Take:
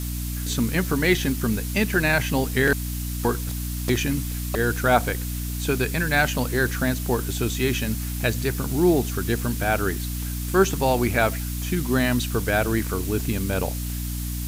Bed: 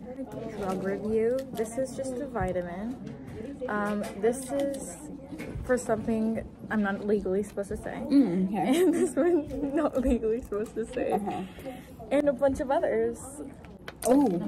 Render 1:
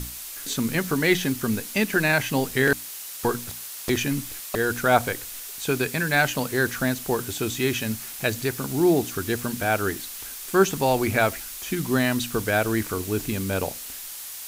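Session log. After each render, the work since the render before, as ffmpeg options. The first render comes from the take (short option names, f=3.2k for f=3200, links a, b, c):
-af "bandreject=f=60:t=h:w=6,bandreject=f=120:t=h:w=6,bandreject=f=180:t=h:w=6,bandreject=f=240:t=h:w=6,bandreject=f=300:t=h:w=6"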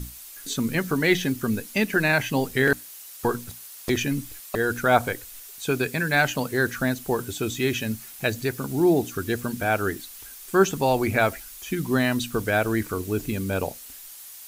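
-af "afftdn=nr=8:nf=-37"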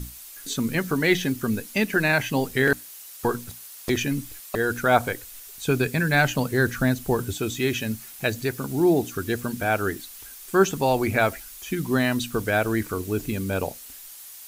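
-filter_complex "[0:a]asettb=1/sr,asplit=3[a][b][c];[a]atrim=end=5.474[d];[b]atrim=start=5.47:end=7.37,asetpts=PTS-STARTPTS,afade=t=in:d=0.004:c=qsin,afade=t=out:st=1.896:d=0.004:c=qsin,lowshelf=f=170:g=9[e];[c]atrim=start=7.366[f];[d][e]acrossfade=d=0.004:c1=hsin:c2=qsin[g];[g][f]acrossfade=d=0.004:c1=qsin:c2=hsin"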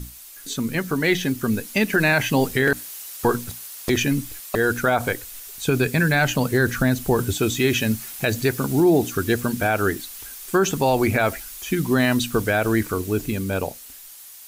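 -af "dynaudnorm=f=270:g=13:m=11.5dB,alimiter=limit=-9dB:level=0:latency=1:release=45"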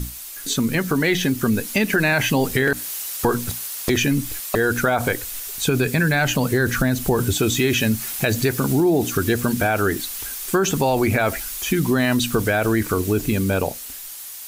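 -filter_complex "[0:a]asplit=2[a][b];[b]alimiter=limit=-16.5dB:level=0:latency=1:release=13,volume=2dB[c];[a][c]amix=inputs=2:normalize=0,acompressor=threshold=-18dB:ratio=2"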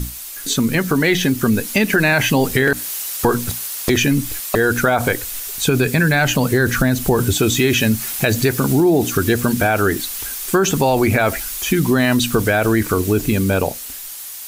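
-af "volume=3.5dB"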